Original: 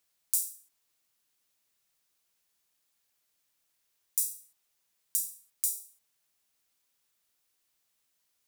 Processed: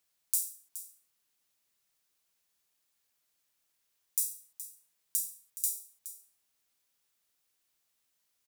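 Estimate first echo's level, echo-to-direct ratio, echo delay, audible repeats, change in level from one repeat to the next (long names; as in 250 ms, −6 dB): −13.5 dB, −13.5 dB, 420 ms, 1, repeats not evenly spaced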